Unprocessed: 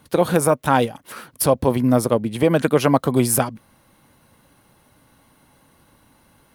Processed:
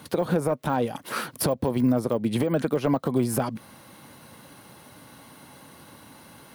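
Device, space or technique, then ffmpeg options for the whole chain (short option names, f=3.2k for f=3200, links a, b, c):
broadcast voice chain: -af "highpass=110,deesser=0.9,acompressor=threshold=-26dB:ratio=4,equalizer=f=4.4k:t=o:w=0.77:g=2.5,alimiter=limit=-21dB:level=0:latency=1:release=235,volume=8dB"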